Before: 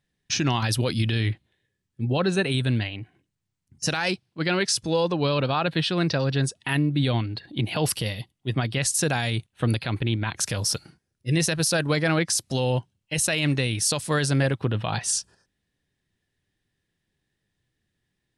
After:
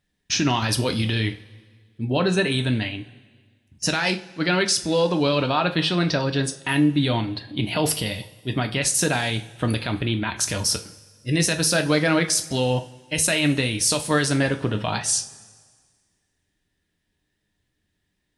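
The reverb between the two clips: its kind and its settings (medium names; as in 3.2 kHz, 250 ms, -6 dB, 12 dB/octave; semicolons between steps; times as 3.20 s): two-slope reverb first 0.3 s, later 1.7 s, from -19 dB, DRR 5 dB; trim +2 dB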